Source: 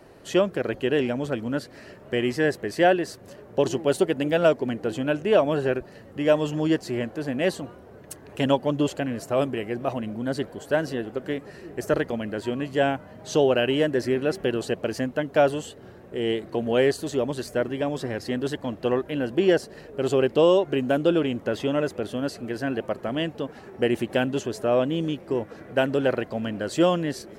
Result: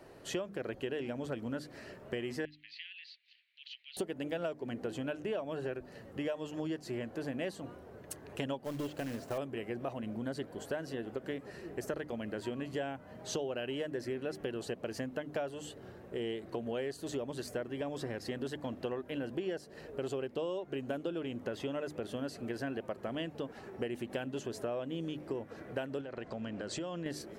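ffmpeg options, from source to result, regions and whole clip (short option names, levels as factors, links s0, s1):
-filter_complex "[0:a]asettb=1/sr,asplit=3[s0][s1][s2];[s0]atrim=end=2.454[s3];[s1]atrim=start=2.45:end=3.97,asetpts=PTS-STARTPTS,afade=t=in:d=0.004:c=qsin,afade=t=out:st=1.516:d=0.004:c=qsin,acompressor=threshold=0.0708:ratio=12:attack=3.2:release=140:knee=1:detection=peak,asuperpass=centerf=3100:order=8:qfactor=1.4[s4];[s2]atrim=start=3.966[s5];[s3][s4]acrossfade=d=0.004:c1=hsin:c2=qsin[s6];[s6][s5]acrossfade=d=0.004:c1=qsin:c2=hsin,asettb=1/sr,asplit=3[s7][s8][s9];[s7]atrim=end=8.644[s10];[s8]atrim=start=8.64:end=9.38,asetpts=PTS-STARTPTS,afade=t=in:d=0.004:c=qsin,afade=t=out:st=0.736:d=0.004:c=qsin,acrossover=split=4200[s11][s12];[s12]acompressor=threshold=0.00178:ratio=4:attack=1:release=60[s13];[s11][s13]amix=inputs=2:normalize=0,acrusher=bits=3:mode=log:mix=0:aa=0.000001,aeval=exprs='(tanh(7.94*val(0)+0.2)-tanh(0.2))/7.94':c=same[s14];[s9]atrim=start=9.376[s15];[s10][s14]acrossfade=d=0.004:c1=hsin:c2=qsin[s16];[s16][s15]acrossfade=d=0.004:c1=qsin:c2=hsin,asettb=1/sr,asplit=3[s17][s18][s19];[s17]atrim=end=26.014[s20];[s18]atrim=start=26.01:end=27.06,asetpts=PTS-STARTPTS,afade=t=in:d=0.004:c=qsin,afade=t=out:st=1.046:d=0.004:c=qsin,lowpass=f=8100:w=0.5412,lowpass=f=8100:w=1.3066,acompressor=threshold=0.0316:ratio=8:attack=3.2:release=140:knee=1:detection=peak[s21];[s19]atrim=start=27.056[s22];[s20][s21]acrossfade=d=0.004:c1=hsin:c2=qsin[s23];[s23][s22]acrossfade=d=0.004:c1=qsin:c2=hsin,bandreject=f=50:t=h:w=6,bandreject=f=100:t=h:w=6,bandreject=f=150:t=h:w=6,bandreject=f=200:t=h:w=6,bandreject=f=250:t=h:w=6,bandreject=f=300:t=h:w=6,acompressor=threshold=0.0316:ratio=6,volume=0.596"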